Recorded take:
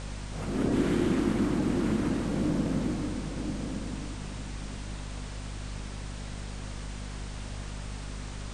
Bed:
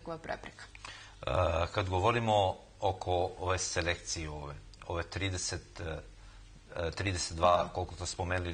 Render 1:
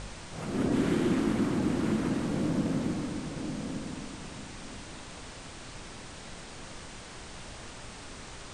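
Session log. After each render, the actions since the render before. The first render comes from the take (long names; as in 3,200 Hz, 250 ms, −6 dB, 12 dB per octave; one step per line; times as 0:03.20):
hum removal 50 Hz, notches 12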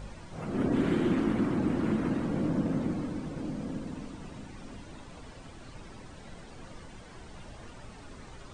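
broadband denoise 11 dB, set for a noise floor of −45 dBFS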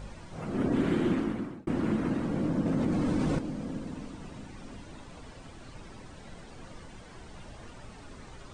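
0:01.10–0:01.67: fade out
0:02.66–0:03.39: envelope flattener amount 100%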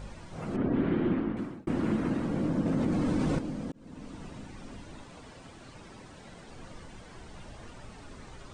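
0:00.56–0:01.37: high-frequency loss of the air 340 metres
0:03.72–0:04.17: fade in
0:05.04–0:06.48: low-shelf EQ 64 Hz −10.5 dB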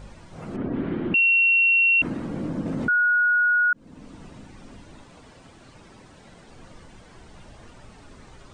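0:01.14–0:02.02: beep over 2,730 Hz −15 dBFS
0:02.88–0:03.73: beep over 1,450 Hz −16.5 dBFS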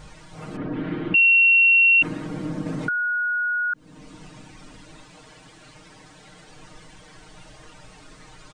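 tilt shelving filter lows −3.5 dB, about 1,200 Hz
comb filter 6.5 ms, depth 79%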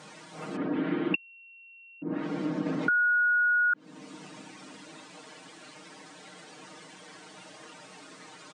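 treble cut that deepens with the level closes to 320 Hz, closed at −14.5 dBFS
high-pass filter 190 Hz 24 dB per octave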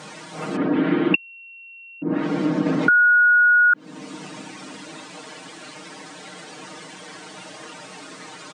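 level +9.5 dB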